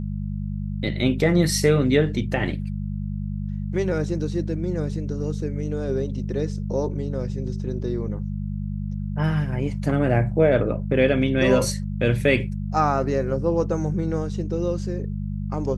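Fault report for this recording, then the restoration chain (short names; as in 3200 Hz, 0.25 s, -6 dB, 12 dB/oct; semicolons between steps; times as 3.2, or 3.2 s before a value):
hum 50 Hz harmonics 4 -28 dBFS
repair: de-hum 50 Hz, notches 4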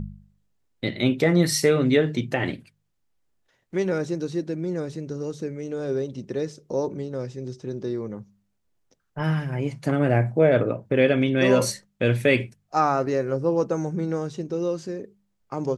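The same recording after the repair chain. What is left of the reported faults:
none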